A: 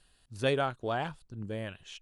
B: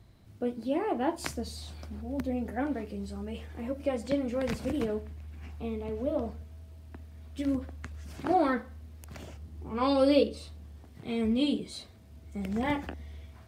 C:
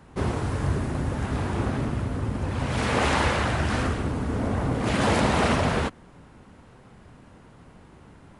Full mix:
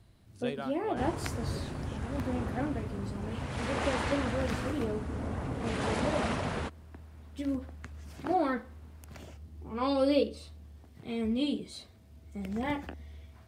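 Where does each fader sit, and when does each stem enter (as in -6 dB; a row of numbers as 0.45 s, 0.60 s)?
-10.0 dB, -3.0 dB, -10.0 dB; 0.00 s, 0.00 s, 0.80 s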